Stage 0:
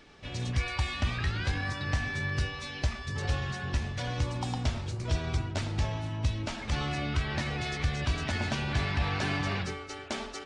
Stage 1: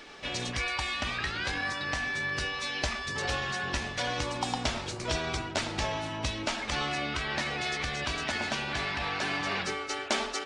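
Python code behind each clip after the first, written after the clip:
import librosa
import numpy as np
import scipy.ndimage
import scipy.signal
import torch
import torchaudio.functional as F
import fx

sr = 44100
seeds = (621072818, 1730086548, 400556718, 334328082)

y = fx.low_shelf(x, sr, hz=250.0, db=-10.0)
y = fx.rider(y, sr, range_db=5, speed_s=0.5)
y = fx.peak_eq(y, sr, hz=96.0, db=-9.0, octaves=1.2)
y = F.gain(torch.from_numpy(y), 5.0).numpy()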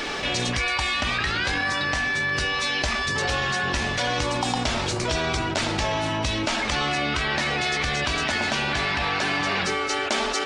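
y = fx.env_flatten(x, sr, amount_pct=70)
y = F.gain(torch.from_numpy(y), 2.5).numpy()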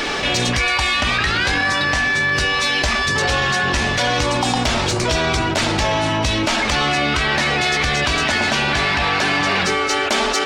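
y = 10.0 ** (-16.0 / 20.0) * np.tanh(x / 10.0 ** (-16.0 / 20.0))
y = F.gain(torch.from_numpy(y), 7.5).numpy()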